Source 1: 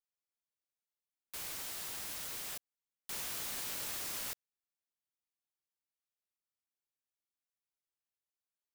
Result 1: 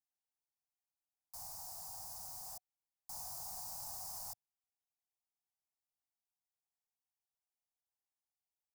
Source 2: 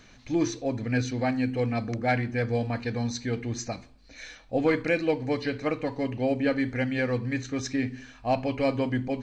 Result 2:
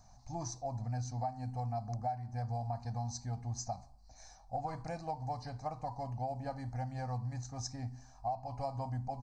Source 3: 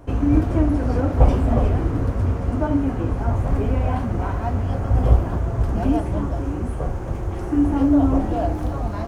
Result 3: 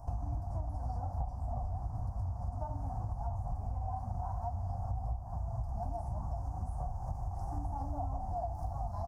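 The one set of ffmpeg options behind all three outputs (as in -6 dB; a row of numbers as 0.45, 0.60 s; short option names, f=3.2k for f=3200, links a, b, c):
-af "firequalizer=gain_entry='entry(100,0);entry(200,-8);entry(290,-21);entry(450,-23);entry(740,7);entry(1400,-16);entry(2200,-25);entry(3200,-27);entry(4900,-3)':delay=0.05:min_phase=1,acompressor=threshold=-31dB:ratio=12,volume=-2dB"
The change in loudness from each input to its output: -5.5, -11.5, -17.5 LU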